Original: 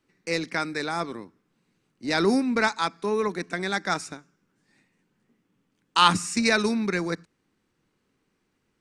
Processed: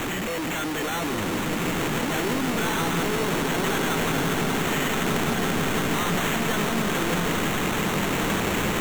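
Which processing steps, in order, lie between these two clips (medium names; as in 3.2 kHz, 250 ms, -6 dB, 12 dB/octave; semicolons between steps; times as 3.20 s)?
one-bit comparator; echo with a slow build-up 169 ms, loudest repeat 8, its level -10 dB; sample-and-hold 9×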